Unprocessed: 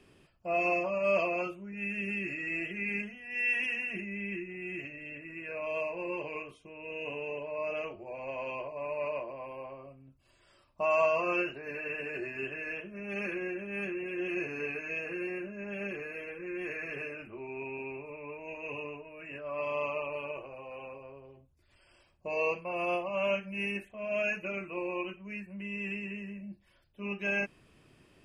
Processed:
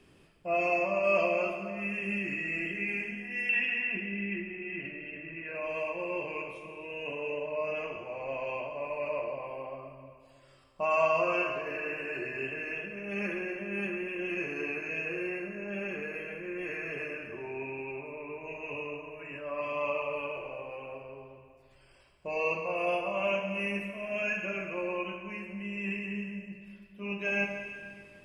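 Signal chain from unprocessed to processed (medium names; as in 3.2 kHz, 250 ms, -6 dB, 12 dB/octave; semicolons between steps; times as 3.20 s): 3.49–5.55 s: steep low-pass 4.5 kHz 36 dB/octave; plate-style reverb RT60 2 s, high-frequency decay 0.95×, DRR 2.5 dB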